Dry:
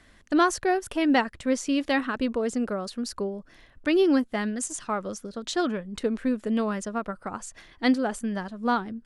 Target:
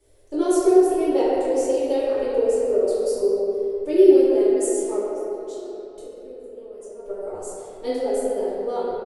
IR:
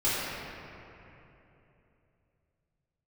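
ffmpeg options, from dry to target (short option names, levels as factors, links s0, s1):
-filter_complex "[0:a]firequalizer=gain_entry='entry(100,0);entry(210,-17);entry(410,15);entry(630,4);entry(1200,-11);entry(1700,-14);entry(2600,-7);entry(9900,12)':delay=0.05:min_phase=1,asettb=1/sr,asplit=3[s0][s1][s2];[s0]atrim=end=4.974[s3];[s1]atrim=start=4.97:end=7.05,asetpts=PTS-STARTPTS,afade=t=in:d=0.004:c=qsin,afade=t=out:st=2.076:d=0.004:c=qsin,acompressor=threshold=0.0126:ratio=6[s4];[s2]atrim=start=7.046[s5];[s3][s4]acrossfade=d=0.004:c1=hsin:c2=qsin[s6];[s6][s5]acrossfade=d=0.004:c1=qsin:c2=hsin[s7];[1:a]atrim=start_sample=2205[s8];[s7][s8]afir=irnorm=-1:irlink=0,volume=0.237"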